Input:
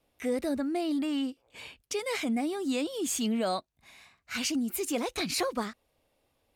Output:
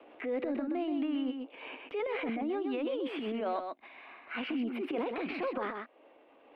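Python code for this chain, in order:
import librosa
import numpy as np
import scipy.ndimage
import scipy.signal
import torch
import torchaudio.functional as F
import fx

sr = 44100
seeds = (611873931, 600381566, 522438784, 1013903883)

p1 = scipy.signal.sosfilt(scipy.signal.ellip(3, 1.0, 40, [290.0, 2900.0], 'bandpass', fs=sr, output='sos'), x)
p2 = fx.transient(p1, sr, attack_db=-10, sustain_db=9)
p3 = fx.rider(p2, sr, range_db=3, speed_s=0.5)
p4 = p2 + (p3 * librosa.db_to_amplitude(0.0))
p5 = fx.high_shelf(p4, sr, hz=2200.0, db=-10.0)
p6 = p5 + fx.echo_single(p5, sr, ms=127, db=-7.0, dry=0)
p7 = fx.band_squash(p6, sr, depth_pct=70)
y = p7 * librosa.db_to_amplitude(-6.5)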